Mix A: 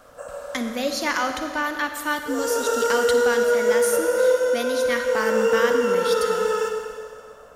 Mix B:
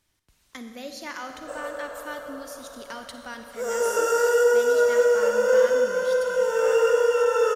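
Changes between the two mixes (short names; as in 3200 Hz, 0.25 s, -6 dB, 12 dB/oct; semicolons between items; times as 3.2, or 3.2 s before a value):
speech -12.0 dB; background: entry +1.30 s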